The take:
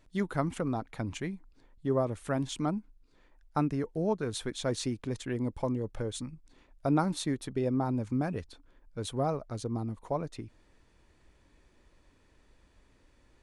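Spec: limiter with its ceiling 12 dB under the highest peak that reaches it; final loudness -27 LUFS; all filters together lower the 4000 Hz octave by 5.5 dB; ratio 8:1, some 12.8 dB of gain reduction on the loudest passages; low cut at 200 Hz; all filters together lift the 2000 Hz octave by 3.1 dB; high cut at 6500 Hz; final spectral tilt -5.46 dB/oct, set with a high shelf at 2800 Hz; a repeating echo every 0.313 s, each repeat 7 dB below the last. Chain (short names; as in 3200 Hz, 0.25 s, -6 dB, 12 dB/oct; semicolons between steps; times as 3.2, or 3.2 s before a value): HPF 200 Hz; LPF 6500 Hz; bell 2000 Hz +7 dB; high shelf 2800 Hz -6 dB; bell 4000 Hz -3.5 dB; compressor 8:1, threshold -37 dBFS; limiter -33.5 dBFS; feedback echo 0.313 s, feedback 45%, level -7 dB; gain +18 dB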